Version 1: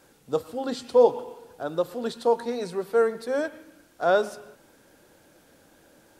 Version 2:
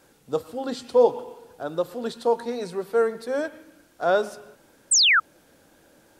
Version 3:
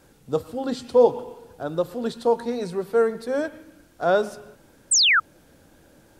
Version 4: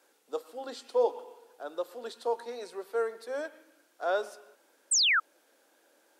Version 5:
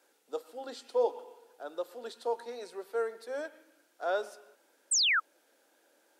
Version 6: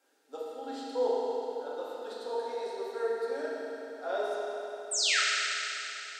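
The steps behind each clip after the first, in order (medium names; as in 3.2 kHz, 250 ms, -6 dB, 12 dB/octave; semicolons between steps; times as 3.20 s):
painted sound fall, 4.91–5.20 s, 1.2–8.9 kHz -17 dBFS
bass shelf 180 Hz +11.5 dB
Bessel high-pass 510 Hz, order 6; trim -7 dB
band-stop 1.1 kHz, Q 14; trim -2 dB
reverberation RT60 3.5 s, pre-delay 4 ms, DRR -8 dB; trim -6.5 dB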